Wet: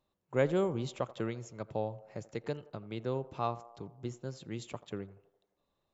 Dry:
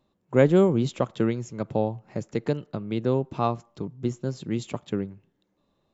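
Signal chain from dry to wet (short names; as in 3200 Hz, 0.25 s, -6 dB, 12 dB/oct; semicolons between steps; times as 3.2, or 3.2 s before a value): bell 220 Hz -7.5 dB 1.7 oct; on a send: narrowing echo 85 ms, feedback 67%, band-pass 690 Hz, level -17 dB; on the sum: gain -7 dB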